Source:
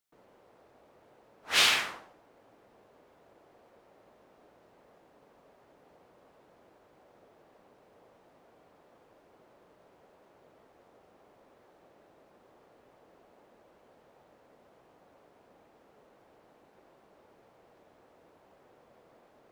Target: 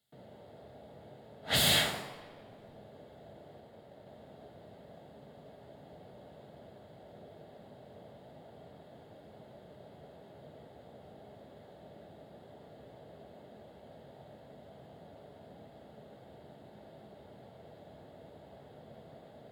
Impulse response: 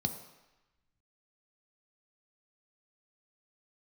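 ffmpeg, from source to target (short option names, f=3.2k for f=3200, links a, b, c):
-filter_complex "[0:a]aeval=exprs='0.0501*(abs(mod(val(0)/0.0501+3,4)-2)-1)':c=same[a];[1:a]atrim=start_sample=2205,asetrate=35721,aresample=44100[b];[a][b]afir=irnorm=-1:irlink=0,asettb=1/sr,asplit=3[c][d][e];[c]atrim=end=3.604[f];[d]atrim=start=3.6:end=4.09,asetpts=PTS-STARTPTS,afade=t=in:d=0.004:c=qsin,afade=t=out:st=0.486:d=0.004:c=qsin,aeval=exprs='0.00841*(cos(1*acos(clip(val(0)/0.00841,-1,1)))-cos(1*PI/2))+0.000668*(cos(3*acos(clip(val(0)/0.00841,-1,1)))-cos(3*PI/2))':c=same[g];[e]atrim=start=4.086[h];[f][g]acrossfade=d=0.004:c1=hsin:c2=qsin[i];[i][h]acrossfade=d=0.004:c1=qsin:c2=hsin"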